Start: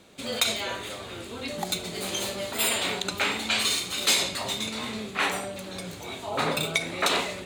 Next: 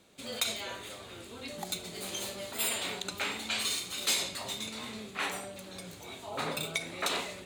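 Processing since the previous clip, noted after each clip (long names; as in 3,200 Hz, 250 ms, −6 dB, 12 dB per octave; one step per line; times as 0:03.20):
high-shelf EQ 5,800 Hz +4.5 dB
level −8.5 dB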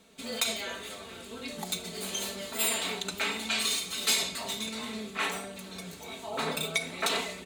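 comb filter 4.5 ms, depth 62%
level +1.5 dB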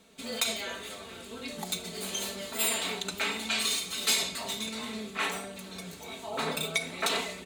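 no processing that can be heard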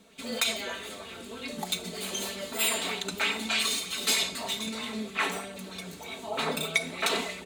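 auto-filter bell 3.2 Hz 210–3,200 Hz +7 dB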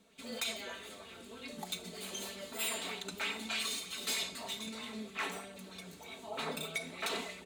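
gain into a clipping stage and back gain 21 dB
level −8.5 dB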